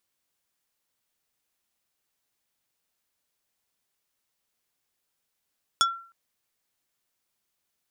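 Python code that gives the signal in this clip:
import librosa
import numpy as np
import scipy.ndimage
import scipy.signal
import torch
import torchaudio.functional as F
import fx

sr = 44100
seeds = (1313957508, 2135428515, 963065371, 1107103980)

y = fx.strike_wood(sr, length_s=0.31, level_db=-17.0, body='plate', hz=1360.0, decay_s=0.45, tilt_db=1.5, modes=5)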